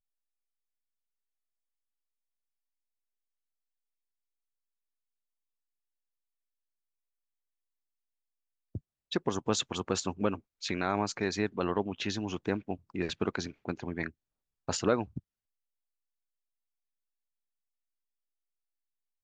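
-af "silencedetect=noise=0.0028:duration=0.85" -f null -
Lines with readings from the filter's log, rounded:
silence_start: 0.00
silence_end: 8.75 | silence_duration: 8.75
silence_start: 15.19
silence_end: 19.23 | silence_duration: 4.04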